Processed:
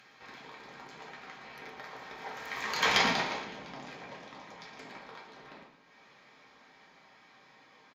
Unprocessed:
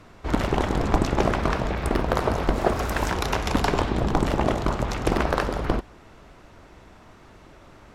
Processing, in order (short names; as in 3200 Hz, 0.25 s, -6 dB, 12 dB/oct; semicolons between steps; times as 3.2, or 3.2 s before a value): Doppler pass-by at 2.93, 52 m/s, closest 3.3 m; running mean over 5 samples; tilt +4.5 dB/oct; upward compressor, threshold -44 dBFS; low shelf 130 Hz +6.5 dB; frequency-shifting echo 0.114 s, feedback 44%, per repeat -46 Hz, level -11 dB; reverb RT60 0.50 s, pre-delay 3 ms, DRR -3 dB; gain -4.5 dB